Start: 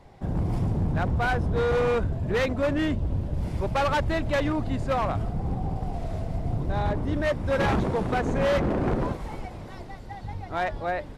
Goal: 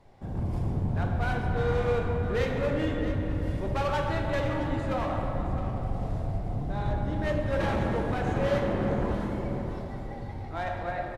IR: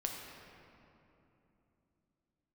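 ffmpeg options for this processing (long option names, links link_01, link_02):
-filter_complex "[0:a]aecho=1:1:664:0.251[link_01];[1:a]atrim=start_sample=2205,asetrate=33516,aresample=44100[link_02];[link_01][link_02]afir=irnorm=-1:irlink=0,volume=-7dB"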